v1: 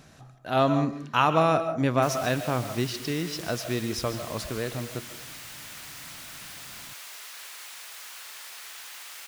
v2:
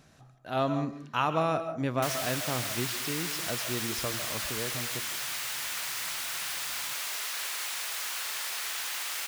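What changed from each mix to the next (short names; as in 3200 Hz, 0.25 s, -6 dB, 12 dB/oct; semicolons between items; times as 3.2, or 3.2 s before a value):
speech -6.0 dB; background +8.0 dB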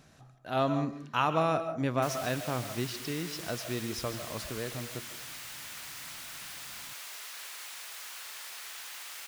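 background -9.0 dB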